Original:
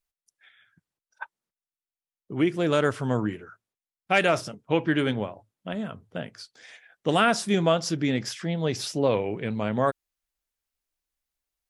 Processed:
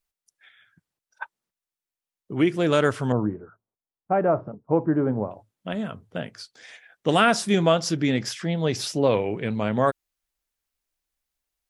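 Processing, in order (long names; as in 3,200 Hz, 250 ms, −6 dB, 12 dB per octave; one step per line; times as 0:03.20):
0:03.12–0:05.31: low-pass filter 1,100 Hz 24 dB per octave
level +2.5 dB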